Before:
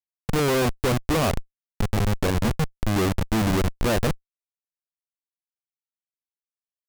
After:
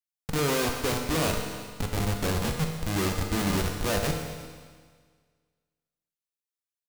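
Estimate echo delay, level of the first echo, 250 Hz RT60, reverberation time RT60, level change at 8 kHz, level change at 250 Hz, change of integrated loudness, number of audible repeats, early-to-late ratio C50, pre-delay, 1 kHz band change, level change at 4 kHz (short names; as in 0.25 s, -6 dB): 0.349 s, -20.0 dB, 1.7 s, 1.7 s, +1.0 dB, -5.0 dB, -4.0 dB, 1, 4.0 dB, 7 ms, -4.0 dB, -0.5 dB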